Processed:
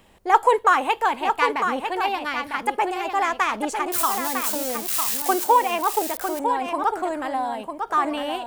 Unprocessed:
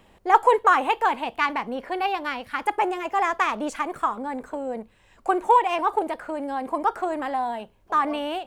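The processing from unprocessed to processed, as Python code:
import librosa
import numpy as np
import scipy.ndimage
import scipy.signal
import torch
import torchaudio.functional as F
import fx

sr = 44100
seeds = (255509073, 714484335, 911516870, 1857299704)

p1 = fx.crossing_spikes(x, sr, level_db=-20.0, at=(3.92, 5.44))
p2 = fx.high_shelf(p1, sr, hz=4500.0, db=7.0)
y = p2 + fx.echo_single(p2, sr, ms=952, db=-6.5, dry=0)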